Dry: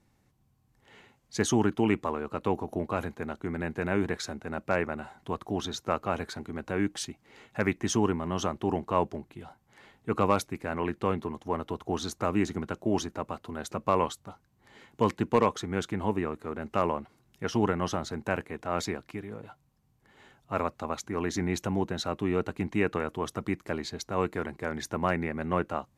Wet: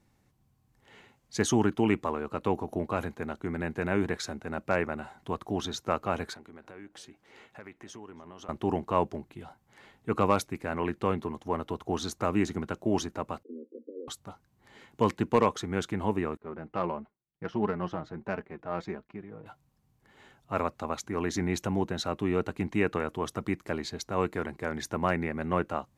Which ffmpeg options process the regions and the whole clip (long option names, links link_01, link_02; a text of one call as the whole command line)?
ffmpeg -i in.wav -filter_complex "[0:a]asettb=1/sr,asplit=3[link_01][link_02][link_03];[link_01]atrim=end=6.344[link_04];[link_02]atrim=start=6.34:end=8.49,asetpts=PTS-STARTPTS,afade=type=in:duration=0.004:curve=qsin,afade=type=out:start_time=2.146:duration=0.004:curve=qsin,bass=frequency=250:gain=-7,treble=frequency=4000:gain=-4,acompressor=threshold=-48dB:ratio=3:attack=3.2:release=140:knee=1:detection=peak,asplit=2[link_05][link_06];[link_06]adelay=281,lowpass=frequency=2000:poles=1,volume=-16dB,asplit=2[link_07][link_08];[link_08]adelay=281,lowpass=frequency=2000:poles=1,volume=0.33,asplit=2[link_09][link_10];[link_10]adelay=281,lowpass=frequency=2000:poles=1,volume=0.33[link_11];[link_05][link_07][link_09][link_11]amix=inputs=4:normalize=0,atrim=end_sample=94815[link_12];[link_03]atrim=start=8.486[link_13];[link_04][link_12]acrossfade=duration=0.004:curve1=hsin:curve2=qsin[link_14];[link_14][link_13]acrossfade=duration=0.004:curve1=qsin:curve2=hsin,asettb=1/sr,asplit=3[link_15][link_16][link_17];[link_15]atrim=end=13.434[link_18];[link_16]atrim=start=13.43:end=14.08,asetpts=PTS-STARTPTS,afade=type=in:duration=0.004:curve=qsin,afade=type=out:start_time=0.646:duration=0.004:curve=qsin,acompressor=threshold=-34dB:ratio=3:attack=3.2:release=140:knee=1:detection=peak,asuperpass=centerf=350:order=20:qfactor=1.2[link_19];[link_17]atrim=start=14.076[link_20];[link_18][link_19]acrossfade=duration=0.004:curve1=hsin:curve2=qsin[link_21];[link_21][link_20]acrossfade=duration=0.004:curve1=qsin:curve2=hsin,asettb=1/sr,asplit=3[link_22][link_23][link_24];[link_22]atrim=end=16.374[link_25];[link_23]atrim=start=16.37:end=19.46,asetpts=PTS-STARTPTS,afade=type=in:duration=0.004:curve=qsin,afade=type=out:start_time=3.086:duration=0.004:curve=qsin,agate=range=-33dB:threshold=-51dB:ratio=3:release=100:detection=peak,flanger=delay=4.5:depth=2.1:regen=27:speed=1.5:shape=triangular,adynamicsmooth=sensitivity=1.5:basefreq=2200[link_26];[link_24]atrim=start=19.456[link_27];[link_25][link_26]acrossfade=duration=0.004:curve1=hsin:curve2=qsin[link_28];[link_28][link_27]acrossfade=duration=0.004:curve1=qsin:curve2=hsin" out.wav